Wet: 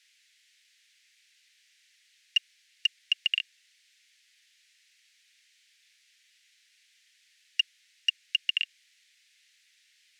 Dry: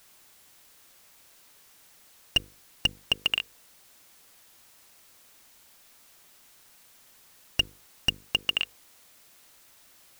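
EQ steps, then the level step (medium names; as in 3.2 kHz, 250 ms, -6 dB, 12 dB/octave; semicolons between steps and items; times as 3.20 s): steep high-pass 1.8 kHz 48 dB/octave; distance through air 58 m; treble shelf 8.8 kHz -11.5 dB; +1.0 dB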